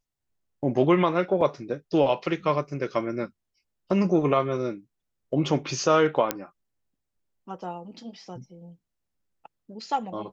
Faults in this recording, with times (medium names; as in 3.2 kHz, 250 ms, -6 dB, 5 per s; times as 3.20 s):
1.41 s: dropout 2.7 ms
6.31 s: pop -8 dBFS